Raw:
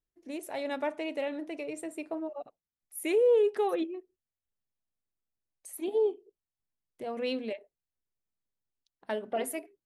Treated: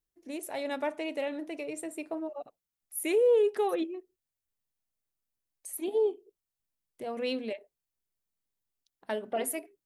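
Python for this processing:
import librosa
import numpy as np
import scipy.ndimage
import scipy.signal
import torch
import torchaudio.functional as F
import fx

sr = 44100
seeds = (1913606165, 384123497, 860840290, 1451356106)

y = fx.high_shelf(x, sr, hz=7100.0, db=6.5)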